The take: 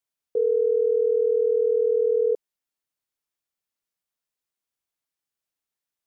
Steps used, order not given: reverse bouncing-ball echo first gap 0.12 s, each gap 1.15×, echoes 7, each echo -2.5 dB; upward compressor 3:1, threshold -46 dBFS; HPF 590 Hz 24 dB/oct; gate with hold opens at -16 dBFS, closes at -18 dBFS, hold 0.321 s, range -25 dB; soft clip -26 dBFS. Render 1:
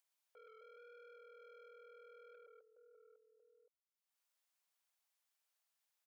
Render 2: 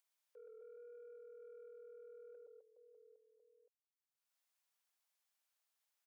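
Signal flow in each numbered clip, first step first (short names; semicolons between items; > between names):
reverse bouncing-ball echo > soft clip > HPF > upward compressor > gate with hold; reverse bouncing-ball echo > upward compressor > HPF > soft clip > gate with hold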